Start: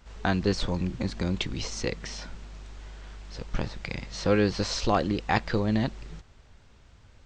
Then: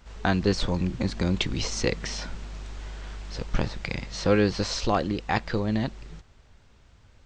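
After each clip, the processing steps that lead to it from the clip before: gain riding within 4 dB 2 s; trim +1.5 dB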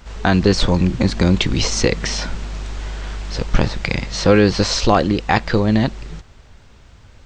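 loudness maximiser +11.5 dB; trim -1 dB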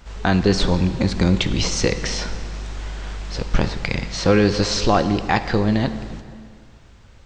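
plate-style reverb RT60 2.1 s, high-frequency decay 0.8×, DRR 10 dB; trim -3 dB

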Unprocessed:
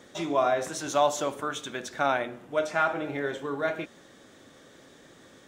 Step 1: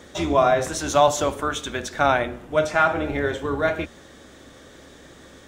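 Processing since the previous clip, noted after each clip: octave divider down 2 oct, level -4 dB; trim +6.5 dB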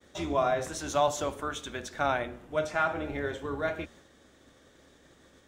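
expander -42 dBFS; trim -9 dB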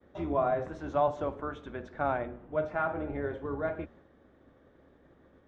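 Bessel low-pass 1.1 kHz, order 2

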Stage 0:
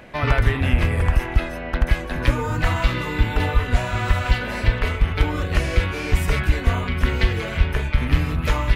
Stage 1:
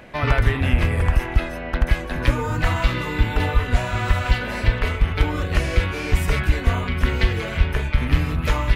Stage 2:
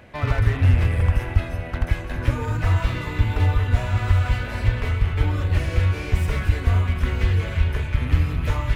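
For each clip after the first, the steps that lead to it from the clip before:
no audible change
backward echo that repeats 112 ms, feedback 81%, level -14 dB; peaking EQ 94 Hz +12 dB 0.46 oct; slew-rate limiter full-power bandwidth 130 Hz; trim -5 dB

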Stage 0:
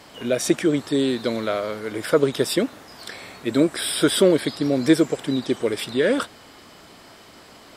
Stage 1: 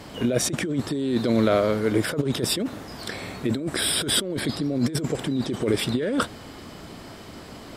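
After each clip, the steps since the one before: bass shelf 360 Hz +11.5 dB; compressor with a negative ratio -20 dBFS, ratio -1; trim -3.5 dB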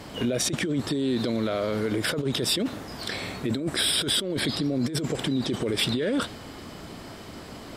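peak limiter -18 dBFS, peak gain reduction 10 dB; dynamic bell 3.6 kHz, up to +6 dB, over -43 dBFS, Q 1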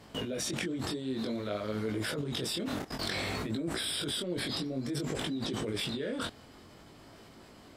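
level held to a coarse grid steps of 19 dB; chorus 0.55 Hz, delay 18 ms, depth 5.7 ms; trim +6.5 dB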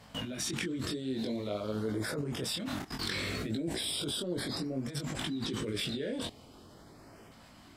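LFO notch saw up 0.41 Hz 330–4300 Hz

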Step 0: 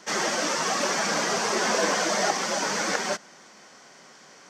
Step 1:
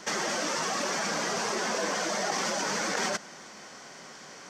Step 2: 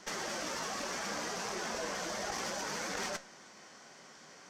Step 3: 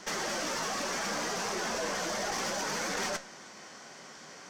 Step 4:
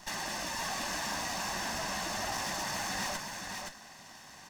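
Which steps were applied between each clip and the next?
bass shelf 73 Hz +9.5 dB; in parallel at +2 dB: compressor with a negative ratio -31 dBFS, ratio -0.5; on the sum: trim -8 dB
valve stage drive 23 dB, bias 0.7; flange 0.67 Hz, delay 9.9 ms, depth 9.4 ms, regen +70%
saturation -31 dBFS, distortion -17 dB; trim +6 dB
comb filter that takes the minimum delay 1.1 ms; delay 520 ms -4.5 dB; trim -2.5 dB

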